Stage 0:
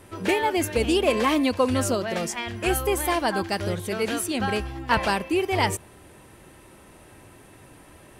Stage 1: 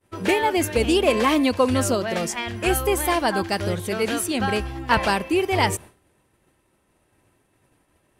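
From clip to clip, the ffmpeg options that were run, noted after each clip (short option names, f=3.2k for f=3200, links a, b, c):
-af "agate=range=-33dB:threshold=-37dB:ratio=3:detection=peak,volume=2.5dB"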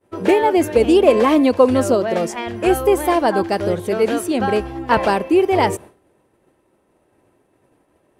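-af "equalizer=f=460:t=o:w=2.8:g=12,volume=-4dB"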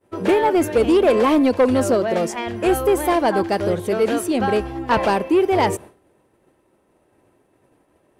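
-af "asoftclip=type=tanh:threshold=-9dB"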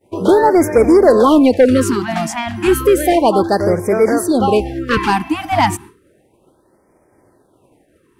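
-af "afftfilt=real='re*(1-between(b*sr/1024,430*pow(3500/430,0.5+0.5*sin(2*PI*0.32*pts/sr))/1.41,430*pow(3500/430,0.5+0.5*sin(2*PI*0.32*pts/sr))*1.41))':imag='im*(1-between(b*sr/1024,430*pow(3500/430,0.5+0.5*sin(2*PI*0.32*pts/sr))/1.41,430*pow(3500/430,0.5+0.5*sin(2*PI*0.32*pts/sr))*1.41))':win_size=1024:overlap=0.75,volume=6dB"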